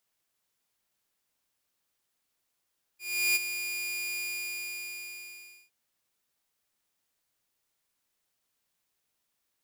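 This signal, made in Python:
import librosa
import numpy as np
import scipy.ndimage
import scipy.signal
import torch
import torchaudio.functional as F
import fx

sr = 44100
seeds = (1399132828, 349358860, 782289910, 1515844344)

y = fx.adsr_tone(sr, wave='saw', hz=2430.0, attack_ms=365.0, decay_ms=25.0, sustain_db=-10.0, held_s=1.19, release_ms=1520.0, level_db=-19.5)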